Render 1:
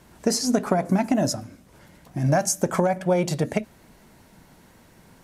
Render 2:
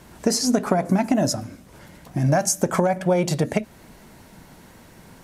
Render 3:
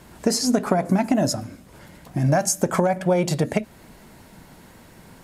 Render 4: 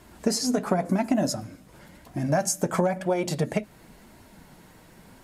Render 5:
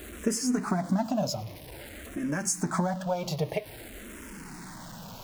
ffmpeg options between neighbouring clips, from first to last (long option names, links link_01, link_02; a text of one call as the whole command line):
ffmpeg -i in.wav -af "acompressor=threshold=-28dB:ratio=1.5,volume=5.5dB" out.wav
ffmpeg -i in.wav -af "bandreject=frequency=5900:width=17" out.wav
ffmpeg -i in.wav -af "flanger=delay=2.9:depth=3.8:regen=-50:speed=0.95:shape=sinusoidal" out.wav
ffmpeg -i in.wav -filter_complex "[0:a]aeval=exprs='val(0)+0.5*0.0188*sgn(val(0))':channel_layout=same,asplit=2[link_01][link_02];[link_02]afreqshift=-0.51[link_03];[link_01][link_03]amix=inputs=2:normalize=1,volume=-2dB" out.wav